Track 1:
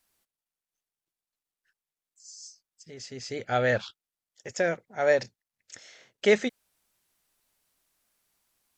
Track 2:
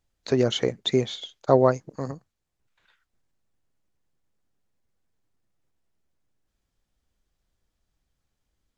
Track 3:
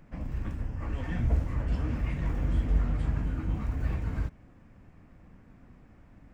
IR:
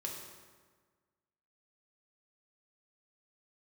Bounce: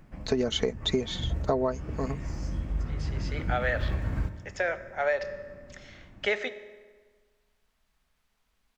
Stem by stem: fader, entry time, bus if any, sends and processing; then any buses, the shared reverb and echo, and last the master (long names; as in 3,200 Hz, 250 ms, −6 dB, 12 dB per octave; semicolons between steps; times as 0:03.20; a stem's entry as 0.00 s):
+0.5 dB, 0.00 s, send −8 dB, three-way crossover with the lows and the highs turned down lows −18 dB, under 540 Hz, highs −16 dB, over 3,900 Hz
−0.5 dB, 0.00 s, no send, comb filter 4.6 ms, depth 57%
−1.0 dB, 0.00 s, send −4.5 dB, automatic ducking −17 dB, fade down 0.30 s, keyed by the second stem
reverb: on, RT60 1.5 s, pre-delay 3 ms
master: downward compressor 12 to 1, threshold −22 dBFS, peak gain reduction 11 dB